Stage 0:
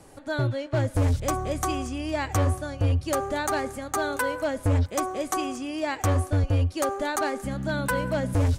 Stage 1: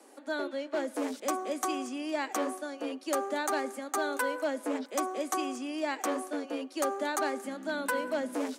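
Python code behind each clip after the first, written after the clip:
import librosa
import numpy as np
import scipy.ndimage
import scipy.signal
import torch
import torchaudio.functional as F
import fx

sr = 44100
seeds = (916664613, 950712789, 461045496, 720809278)

y = scipy.signal.sosfilt(scipy.signal.butter(16, 220.0, 'highpass', fs=sr, output='sos'), x)
y = y * librosa.db_to_amplitude(-4.0)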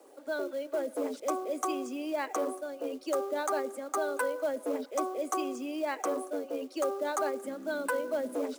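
y = fx.envelope_sharpen(x, sr, power=1.5)
y = fx.quant_companded(y, sr, bits=6)
y = fx.notch(y, sr, hz=1800.0, q=12.0)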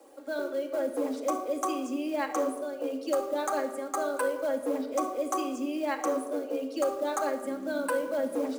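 y = fx.room_shoebox(x, sr, seeds[0], volume_m3=3000.0, walls='furnished', distance_m=2.2)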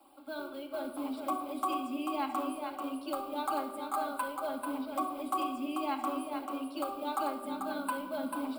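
y = fx.fixed_phaser(x, sr, hz=1800.0, stages=6)
y = y + 10.0 ** (-6.0 / 20.0) * np.pad(y, (int(440 * sr / 1000.0), 0))[:len(y)]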